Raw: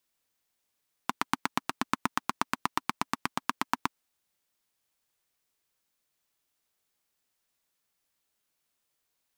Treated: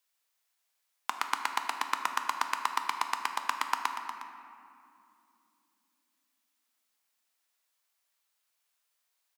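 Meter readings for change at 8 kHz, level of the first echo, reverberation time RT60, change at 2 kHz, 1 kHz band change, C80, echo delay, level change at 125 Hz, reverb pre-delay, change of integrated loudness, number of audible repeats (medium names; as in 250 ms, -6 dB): +1.0 dB, -12.0 dB, 2.6 s, +1.0 dB, +1.5 dB, 5.5 dB, 238 ms, under -20 dB, 3 ms, +0.5 dB, 2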